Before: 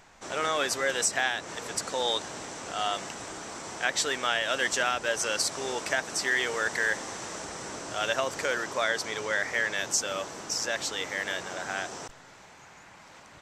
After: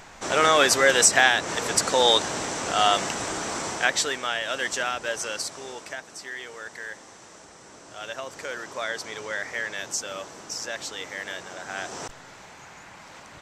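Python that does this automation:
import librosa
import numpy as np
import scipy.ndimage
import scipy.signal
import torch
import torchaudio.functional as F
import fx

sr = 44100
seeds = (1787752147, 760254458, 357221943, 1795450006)

y = fx.gain(x, sr, db=fx.line((3.63, 9.5), (4.22, -0.5), (5.11, -0.5), (6.19, -10.0), (7.62, -10.0), (8.94, -2.5), (11.66, -2.5), (12.06, 5.5)))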